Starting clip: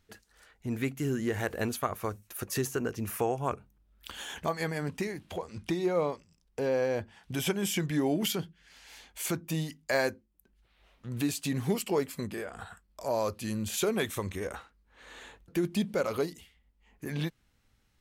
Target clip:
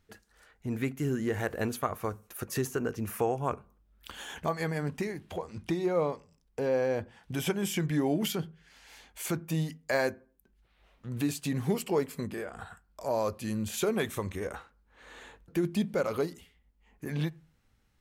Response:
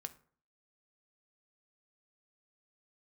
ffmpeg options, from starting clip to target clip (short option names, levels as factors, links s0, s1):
-filter_complex "[0:a]asplit=2[s0][s1];[1:a]atrim=start_sample=2205,afade=t=out:st=0.36:d=0.01,atrim=end_sample=16317,lowpass=2600[s2];[s1][s2]afir=irnorm=-1:irlink=0,volume=0.631[s3];[s0][s3]amix=inputs=2:normalize=0,volume=0.75"